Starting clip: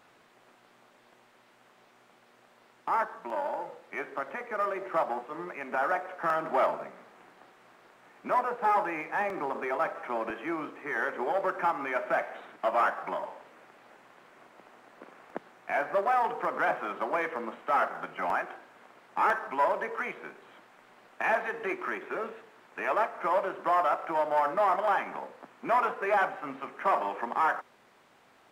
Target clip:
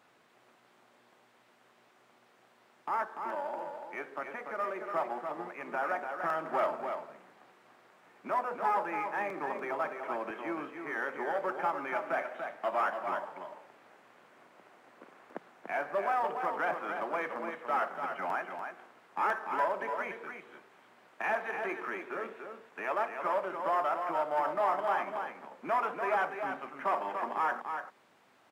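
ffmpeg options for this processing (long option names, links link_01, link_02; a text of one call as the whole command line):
ffmpeg -i in.wav -filter_complex "[0:a]highpass=90,asplit=2[link_01][link_02];[link_02]aecho=0:1:290:0.473[link_03];[link_01][link_03]amix=inputs=2:normalize=0,volume=-4.5dB" out.wav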